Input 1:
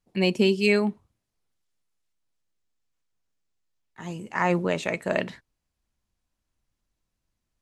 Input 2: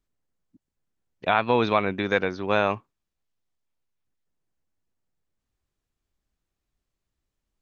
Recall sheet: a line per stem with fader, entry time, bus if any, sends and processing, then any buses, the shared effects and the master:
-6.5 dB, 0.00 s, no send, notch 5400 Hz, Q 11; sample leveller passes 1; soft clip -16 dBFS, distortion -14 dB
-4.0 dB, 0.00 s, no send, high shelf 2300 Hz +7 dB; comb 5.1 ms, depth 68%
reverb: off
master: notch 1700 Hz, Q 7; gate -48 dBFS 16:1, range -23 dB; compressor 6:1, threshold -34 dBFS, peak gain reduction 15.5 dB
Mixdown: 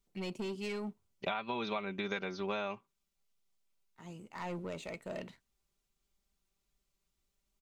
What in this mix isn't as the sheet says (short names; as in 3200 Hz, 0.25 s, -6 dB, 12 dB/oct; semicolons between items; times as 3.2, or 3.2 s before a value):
stem 1 -6.5 dB -> -16.5 dB; master: missing gate -48 dBFS 16:1, range -23 dB